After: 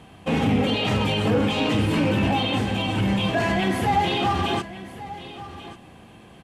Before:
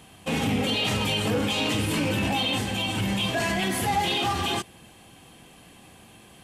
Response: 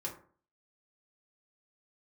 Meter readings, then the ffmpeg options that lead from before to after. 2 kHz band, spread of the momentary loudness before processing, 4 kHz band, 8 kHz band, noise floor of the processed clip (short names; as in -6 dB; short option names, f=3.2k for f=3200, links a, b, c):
+1.0 dB, 3 LU, -1.5 dB, -7.5 dB, -48 dBFS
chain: -filter_complex "[0:a]lowpass=f=1.7k:p=1,asplit=2[a][b];[b]aecho=0:1:1137:0.168[c];[a][c]amix=inputs=2:normalize=0,volume=5dB"